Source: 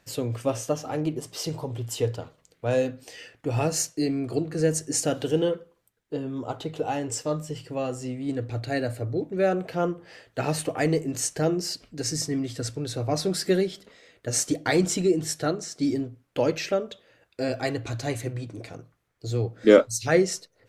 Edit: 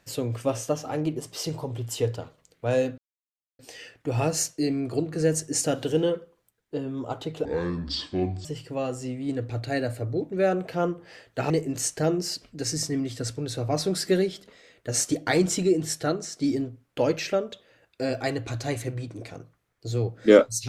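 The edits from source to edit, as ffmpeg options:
-filter_complex "[0:a]asplit=5[s0][s1][s2][s3][s4];[s0]atrim=end=2.98,asetpts=PTS-STARTPTS,afade=t=out:st=2.976:d=0.004:c=hsin,apad=pad_dur=0.61[s5];[s1]atrim=start=2.98:end=6.844,asetpts=PTS-STARTPTS,afade=t=in:d=0.004:c=hsin[s6];[s2]atrim=start=6.84:end=7.45,asetpts=PTS-STARTPTS,asetrate=26901,aresample=44100[s7];[s3]atrim=start=7.446:end=10.502[s8];[s4]atrim=start=10.888[s9];[s5][s6]concat=n=2:v=0:a=1[s10];[s10][s7]acrossfade=d=0.004:c1=hsin:c2=hsin[s11];[s11][s8]acrossfade=d=0.004:c1=hsin:c2=hsin[s12];[s12][s9]acrossfade=d=0.004:c1=hsin:c2=hsin"

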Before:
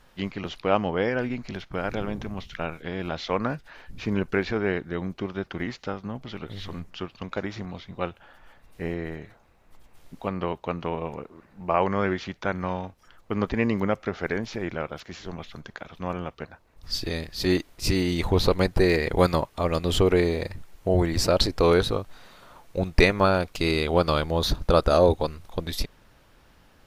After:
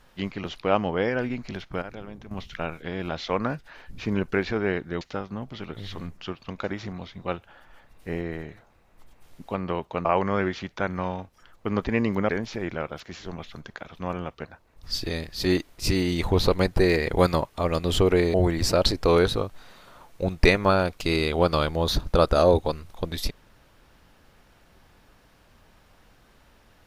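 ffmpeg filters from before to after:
-filter_complex "[0:a]asplit=7[s0][s1][s2][s3][s4][s5][s6];[s0]atrim=end=1.822[s7];[s1]atrim=start=1.818:end=2.312,asetpts=PTS-STARTPTS,volume=0.316[s8];[s2]atrim=start=2.308:end=5.012[s9];[s3]atrim=start=5.738:end=10.782[s10];[s4]atrim=start=11.698:end=13.942[s11];[s5]atrim=start=14.288:end=20.342[s12];[s6]atrim=start=20.888[s13];[s7][s8]acrossfade=d=0.004:c1=hsin:c2=hsin[s14];[s14][s9]acrossfade=d=0.004:c1=hsin:c2=hsin[s15];[s15][s10]acrossfade=d=0.004:c1=hsin:c2=hsin[s16];[s16][s11]acrossfade=d=0.004:c1=hsin:c2=hsin[s17];[s17][s12]acrossfade=d=0.004:c1=hsin:c2=hsin[s18];[s18][s13]acrossfade=d=0.004:c1=hsin:c2=hsin"

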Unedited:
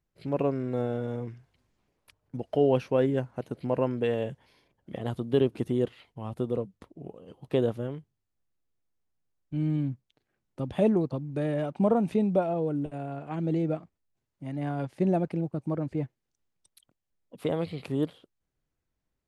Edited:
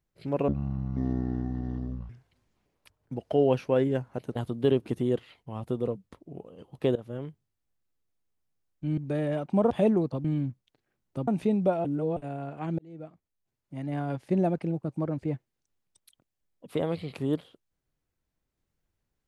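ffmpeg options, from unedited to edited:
-filter_complex "[0:a]asplit=12[s0][s1][s2][s3][s4][s5][s6][s7][s8][s9][s10][s11];[s0]atrim=end=0.484[s12];[s1]atrim=start=0.48:end=1.32,asetpts=PTS-STARTPTS,asetrate=22932,aresample=44100,atrim=end_sample=71238,asetpts=PTS-STARTPTS[s13];[s2]atrim=start=1.316:end=3.582[s14];[s3]atrim=start=5.048:end=7.65,asetpts=PTS-STARTPTS,afade=t=out:st=2.598:d=0.004:c=hsin:silence=0.112202[s15];[s4]atrim=start=7.65:end=9.672,asetpts=PTS-STARTPTS,afade=t=in:d=0.29:silence=0.112202[s16];[s5]atrim=start=11.238:end=11.972[s17];[s6]atrim=start=10.698:end=11.242[s18];[s7]atrim=start=9.668:end=10.702[s19];[s8]atrim=start=11.968:end=12.542[s20];[s9]atrim=start=12.538:end=12.862,asetpts=PTS-STARTPTS,areverse[s21];[s10]atrim=start=12.858:end=13.48,asetpts=PTS-STARTPTS,afade=t=out:st=0.618:d=0.004:c=hsin[s22];[s11]atrim=start=13.48,asetpts=PTS-STARTPTS,afade=t=in:d=1[s23];[s12][s13]acrossfade=d=0.004:c1=hsin:c2=hsin[s24];[s24][s14]acrossfade=d=0.004:c1=hsin:c2=hsin[s25];[s15][s16]concat=n=2:v=0:a=1[s26];[s25][s26]acrossfade=d=0.004:c1=hsin:c2=hsin[s27];[s27][s17]acrossfade=d=0.004:c1=hsin:c2=hsin[s28];[s28][s18]acrossfade=d=0.004:c1=hsin:c2=hsin[s29];[s29][s19]acrossfade=d=0.004:c1=hsin:c2=hsin[s30];[s30][s20]acrossfade=d=0.004:c1=hsin:c2=hsin[s31];[s31][s21]acrossfade=d=0.004:c1=hsin:c2=hsin[s32];[s22][s23]concat=n=2:v=0:a=1[s33];[s32][s33]acrossfade=d=0.004:c1=hsin:c2=hsin"

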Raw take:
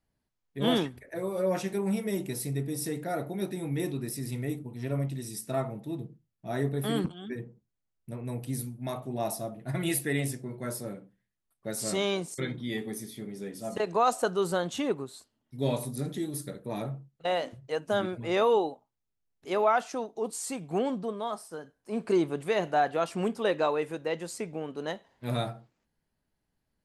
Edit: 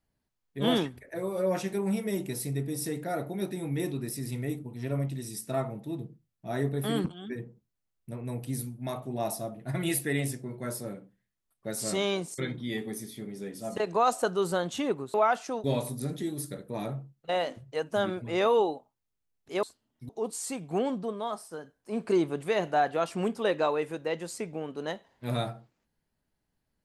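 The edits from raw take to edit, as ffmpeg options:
-filter_complex "[0:a]asplit=5[s0][s1][s2][s3][s4];[s0]atrim=end=15.142[s5];[s1]atrim=start=19.588:end=20.092[s6];[s2]atrim=start=15.598:end=19.592[s7];[s3]atrim=start=15.138:end=15.602[s8];[s4]atrim=start=20.088[s9];[s5][s6]acrossfade=d=0.004:c1=hsin:c2=hsin[s10];[s10][s7]acrossfade=d=0.004:c1=hsin:c2=hsin[s11];[s11][s8]acrossfade=d=0.004:c1=hsin:c2=hsin[s12];[s12][s9]acrossfade=d=0.004:c1=hsin:c2=hsin"

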